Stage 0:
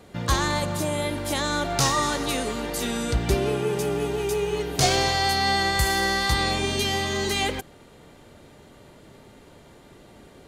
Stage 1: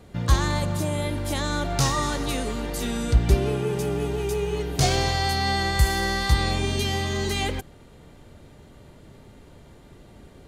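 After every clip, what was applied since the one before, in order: low shelf 150 Hz +11.5 dB; gain -3 dB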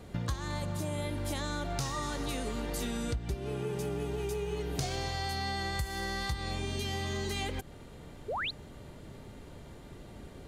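compressor 10:1, threshold -31 dBFS, peak gain reduction 19 dB; painted sound rise, 8.28–8.51, 370–4600 Hz -34 dBFS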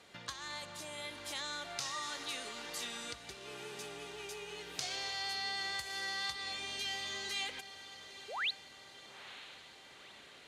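band-pass 3500 Hz, Q 0.62; diffused feedback echo 0.933 s, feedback 58%, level -13.5 dB; gain +1.5 dB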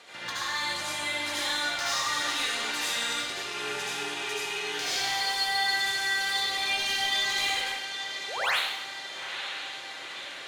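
overdrive pedal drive 21 dB, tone 6700 Hz, clips at -20 dBFS; reverb RT60 0.90 s, pre-delay 64 ms, DRR -7.5 dB; gain -6 dB

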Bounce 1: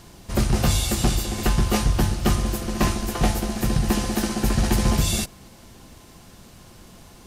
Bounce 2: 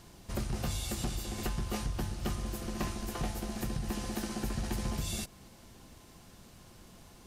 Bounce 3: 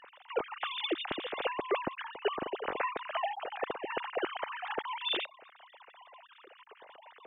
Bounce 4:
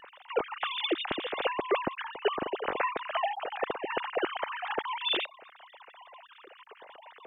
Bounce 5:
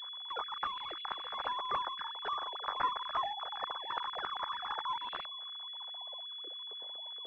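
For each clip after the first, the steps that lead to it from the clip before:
compressor 2.5:1, threshold -26 dBFS, peak gain reduction 8 dB; gain -8 dB
sine-wave speech; gain -1 dB
vibrato 2.3 Hz 11 cents; gain +3.5 dB
high-pass sweep 1100 Hz -> 67 Hz, 5.72–7.23; pulse-width modulation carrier 3400 Hz; gain -6 dB

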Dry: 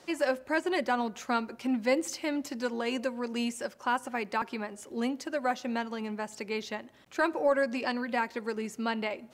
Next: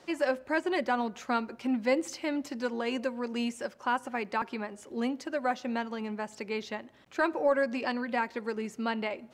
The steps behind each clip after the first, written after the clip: high shelf 6600 Hz -8.5 dB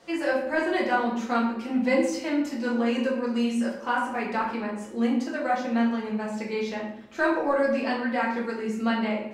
reverb RT60 0.85 s, pre-delay 4 ms, DRR -5 dB; gain -2 dB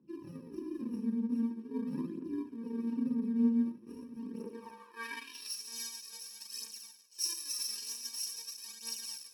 FFT order left unsorted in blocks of 64 samples; phaser 0.45 Hz, delay 5 ms, feedback 55%; band-pass sweep 230 Hz -> 6100 Hz, 4.21–5.61; gain -4 dB

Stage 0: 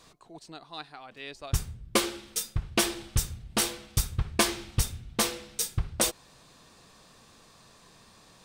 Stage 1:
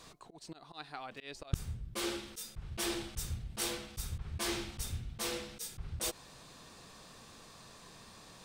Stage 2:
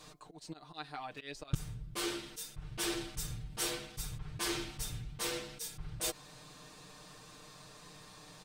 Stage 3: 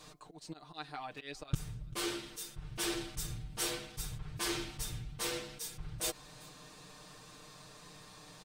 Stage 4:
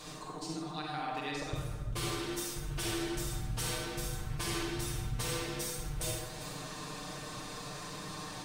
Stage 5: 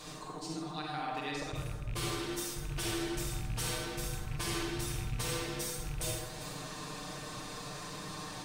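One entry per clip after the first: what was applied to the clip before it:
auto swell 0.174 s; gain +1.5 dB
comb 6.6 ms, depth 77%; gain -1.5 dB
echo 0.389 s -23 dB
compressor 4:1, threshold -45 dBFS, peak gain reduction 15.5 dB; reverb RT60 1.5 s, pre-delay 38 ms, DRR -3 dB; gain +6.5 dB
rattling part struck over -35 dBFS, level -37 dBFS; attack slew limiter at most 150 dB/s

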